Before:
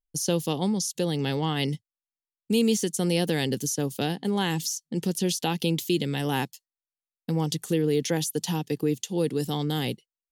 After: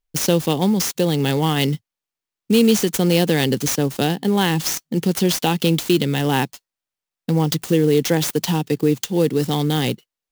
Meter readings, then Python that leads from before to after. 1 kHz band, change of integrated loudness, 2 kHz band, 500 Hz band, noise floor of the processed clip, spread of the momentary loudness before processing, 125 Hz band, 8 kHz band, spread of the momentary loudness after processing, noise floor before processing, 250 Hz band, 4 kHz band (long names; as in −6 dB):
+8.0 dB, +8.0 dB, +8.0 dB, +8.0 dB, below −85 dBFS, 5 LU, +8.0 dB, +5.5 dB, 5 LU, below −85 dBFS, +8.0 dB, +7.0 dB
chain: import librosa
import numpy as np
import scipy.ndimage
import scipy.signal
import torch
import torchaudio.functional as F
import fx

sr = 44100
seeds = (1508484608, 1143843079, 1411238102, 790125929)

y = fx.clock_jitter(x, sr, seeds[0], jitter_ms=0.022)
y = F.gain(torch.from_numpy(y), 8.0).numpy()